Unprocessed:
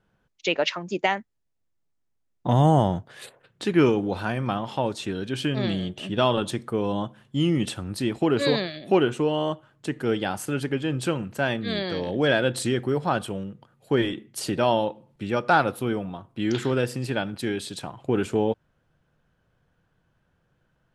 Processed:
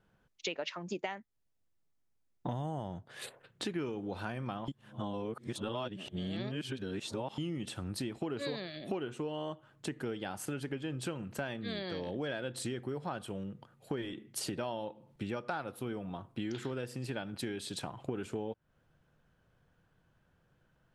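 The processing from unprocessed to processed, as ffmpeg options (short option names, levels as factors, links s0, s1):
-filter_complex "[0:a]asplit=3[s0][s1][s2];[s0]atrim=end=4.682[s3];[s1]atrim=start=4.678:end=7.382,asetpts=PTS-STARTPTS,areverse[s4];[s2]atrim=start=7.378[s5];[s3][s4]acrossfade=d=0.004:c1=hsin:c2=hsin[s6];[s6][s5]acrossfade=d=0.004:c1=hsin:c2=hsin,acompressor=threshold=0.0224:ratio=6,volume=0.794"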